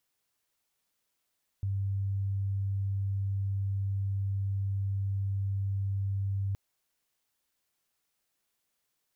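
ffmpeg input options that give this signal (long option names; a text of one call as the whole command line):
ffmpeg -f lavfi -i "sine=frequency=98.3:duration=4.92:sample_rate=44100,volume=-9.94dB" out.wav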